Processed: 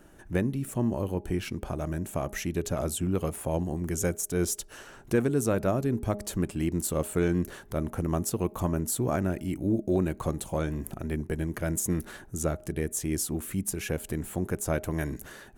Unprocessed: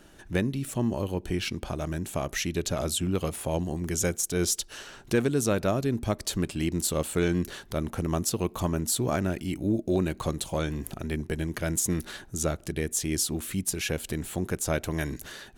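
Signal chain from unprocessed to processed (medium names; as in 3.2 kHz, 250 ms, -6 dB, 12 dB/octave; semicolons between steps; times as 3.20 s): peaking EQ 4 kHz -10.5 dB 1.5 oct; de-hum 206.6 Hz, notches 4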